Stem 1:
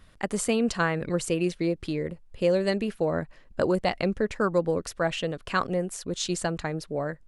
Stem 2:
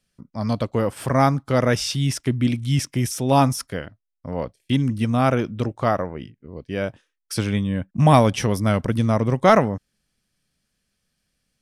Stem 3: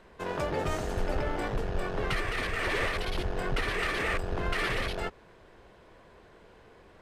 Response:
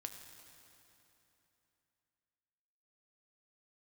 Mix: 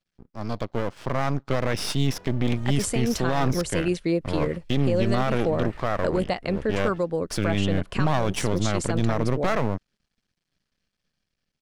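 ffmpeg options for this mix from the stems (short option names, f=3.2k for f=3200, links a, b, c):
-filter_complex "[0:a]adelay=2450,volume=-3.5dB[a];[1:a]lowpass=f=5.8k:w=0.5412,lowpass=f=5.8k:w=1.3066,aeval=exprs='max(val(0),0)':c=same,volume=-3.5dB,asplit=2[b][c];[2:a]acrossover=split=190[d][e];[e]acompressor=threshold=-39dB:ratio=6[f];[d][f]amix=inputs=2:normalize=0,adelay=1900,volume=-15.5dB[g];[c]apad=whole_len=393124[h];[g][h]sidechaingate=range=-33dB:threshold=-45dB:ratio=16:detection=peak[i];[a][i]amix=inputs=2:normalize=0,alimiter=limit=-22dB:level=0:latency=1:release=435,volume=0dB[j];[b][j]amix=inputs=2:normalize=0,dynaudnorm=f=400:g=7:m=11.5dB,alimiter=limit=-12dB:level=0:latency=1:release=33"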